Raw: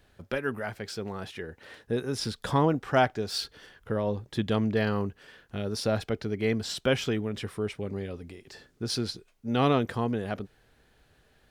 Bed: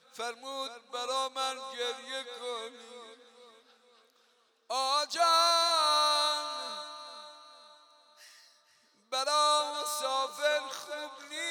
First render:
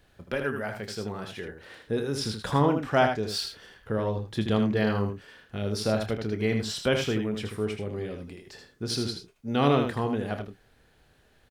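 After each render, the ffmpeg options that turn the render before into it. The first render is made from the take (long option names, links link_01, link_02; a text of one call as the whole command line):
ffmpeg -i in.wav -filter_complex "[0:a]asplit=2[link_01][link_02];[link_02]adelay=28,volume=-11dB[link_03];[link_01][link_03]amix=inputs=2:normalize=0,aecho=1:1:79:0.473" out.wav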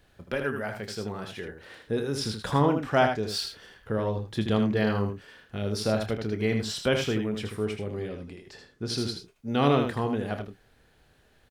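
ffmpeg -i in.wav -filter_complex "[0:a]asettb=1/sr,asplit=3[link_01][link_02][link_03];[link_01]atrim=end=8.084[link_04];[link_02]atrim=start=8.08:end=8.98,asetpts=PTS-STARTPTS,afade=type=in:duration=0.004:curve=qsin,afade=type=out:start_time=0.896:duration=0.004:curve=qsin,highshelf=frequency=10000:gain=-10[link_05];[link_03]atrim=start=8.976[link_06];[link_04][link_05]acrossfade=duration=0.004:curve1=hsin:curve2=qsin[link_07];[link_07][link_06]acrossfade=duration=0.004:curve1=qsin:curve2=hsin" out.wav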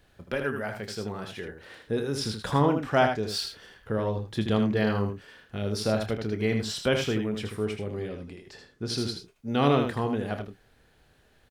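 ffmpeg -i in.wav -af anull out.wav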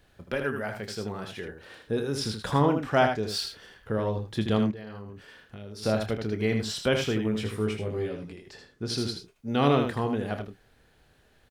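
ffmpeg -i in.wav -filter_complex "[0:a]asettb=1/sr,asplit=3[link_01][link_02][link_03];[link_01]atrim=end=1.484[link_04];[link_02]atrim=start=1.48:end=2.11,asetpts=PTS-STARTPTS,afade=type=in:duration=0.004:curve=qsin,afade=type=out:start_time=0.626:duration=0.004:curve=qsin,bandreject=frequency=2000:width=12[link_05];[link_03]atrim=start=2.106[link_06];[link_04][link_05]acrossfade=duration=0.004:curve1=hsin:curve2=qsin[link_07];[link_07][link_06]acrossfade=duration=0.004:curve1=qsin:curve2=hsin,asplit=3[link_08][link_09][link_10];[link_08]afade=type=out:start_time=4.7:duration=0.02[link_11];[link_09]acompressor=threshold=-38dB:ratio=8:attack=3.2:release=140:knee=1:detection=peak,afade=type=in:start_time=4.7:duration=0.02,afade=type=out:start_time=5.82:duration=0.02[link_12];[link_10]afade=type=in:start_time=5.82:duration=0.02[link_13];[link_11][link_12][link_13]amix=inputs=3:normalize=0,asettb=1/sr,asplit=3[link_14][link_15][link_16];[link_14]atrim=end=7.234[link_17];[link_15]atrim=start=7.23:end=8.32,asetpts=PTS-STARTPTS,afade=type=in:duration=0.004:curve=qsin,afade=type=out:start_time=1.086:duration=0.004:curve=qsin,asplit=2[link_18][link_19];[link_19]adelay=18,volume=-3.5dB[link_20];[link_18][link_20]amix=inputs=2:normalize=0,atrim=end_sample=48069[link_21];[link_16]atrim=start=8.316[link_22];[link_17][link_21]acrossfade=duration=0.004:curve1=hsin:curve2=qsin[link_23];[link_23][link_22]acrossfade=duration=0.004:curve1=qsin:curve2=hsin" out.wav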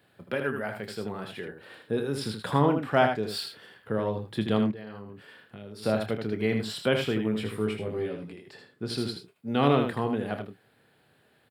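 ffmpeg -i in.wav -af "highpass=frequency=110:width=0.5412,highpass=frequency=110:width=1.3066,equalizer=frequency=6100:width_type=o:width=0.39:gain=-14" out.wav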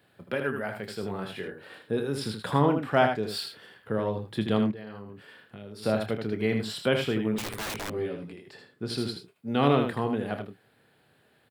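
ffmpeg -i in.wav -filter_complex "[0:a]asettb=1/sr,asplit=3[link_01][link_02][link_03];[link_01]atrim=end=1.014[link_04];[link_02]atrim=start=1.01:end=1.79,asetpts=PTS-STARTPTS,afade=type=in:duration=0.004:curve=qsin,afade=type=out:start_time=0.776:duration=0.004:curve=qsin,asplit=2[link_05][link_06];[link_06]adelay=21,volume=-5dB[link_07];[link_05][link_07]amix=inputs=2:normalize=0,atrim=end_sample=34398[link_08];[link_03]atrim=start=1.786[link_09];[link_04][link_08]acrossfade=duration=0.004:curve1=hsin:curve2=qsin[link_10];[link_10][link_09]acrossfade=duration=0.004:curve1=qsin:curve2=hsin,asettb=1/sr,asplit=3[link_11][link_12][link_13];[link_11]atrim=end=7.384[link_14];[link_12]atrim=start=7.38:end=7.9,asetpts=PTS-STARTPTS,afade=type=in:duration=0.004:curve=qsin,afade=type=out:start_time=0.516:duration=0.004:curve=qsin,aeval=exprs='(mod(26.6*val(0)+1,2)-1)/26.6':channel_layout=same[link_15];[link_13]atrim=start=7.896[link_16];[link_14][link_15]acrossfade=duration=0.004:curve1=hsin:curve2=qsin[link_17];[link_17][link_16]acrossfade=duration=0.004:curve1=qsin:curve2=hsin" out.wav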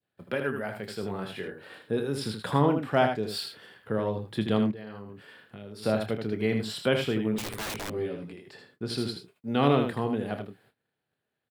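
ffmpeg -i in.wav -af "agate=range=-20dB:threshold=-60dB:ratio=16:detection=peak,adynamicequalizer=threshold=0.0112:dfrequency=1400:dqfactor=0.78:tfrequency=1400:tqfactor=0.78:attack=5:release=100:ratio=0.375:range=2:mode=cutabove:tftype=bell" out.wav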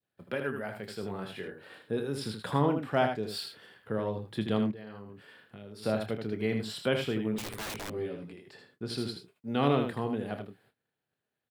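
ffmpeg -i in.wav -af "volume=-3.5dB" out.wav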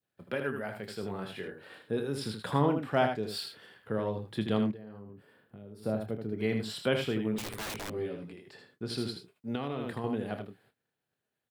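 ffmpeg -i in.wav -filter_complex "[0:a]asplit=3[link_01][link_02][link_03];[link_01]afade=type=out:start_time=4.76:duration=0.02[link_04];[link_02]equalizer=frequency=3500:width=0.34:gain=-13.5,afade=type=in:start_time=4.76:duration=0.02,afade=type=out:start_time=6.37:duration=0.02[link_05];[link_03]afade=type=in:start_time=6.37:duration=0.02[link_06];[link_04][link_05][link_06]amix=inputs=3:normalize=0,asettb=1/sr,asplit=3[link_07][link_08][link_09];[link_07]atrim=end=9.554[link_10];[link_08]atrim=start=9.55:end=10.04,asetpts=PTS-STARTPTS,afade=type=in:duration=0.004:curve=qsin,afade=type=out:start_time=0.486:duration=0.004:curve=qsin,acompressor=threshold=-30dB:ratio=6:attack=3.2:release=140:knee=1:detection=peak[link_11];[link_09]atrim=start=10.036[link_12];[link_10][link_11]acrossfade=duration=0.004:curve1=hsin:curve2=qsin[link_13];[link_13][link_12]acrossfade=duration=0.004:curve1=qsin:curve2=hsin" out.wav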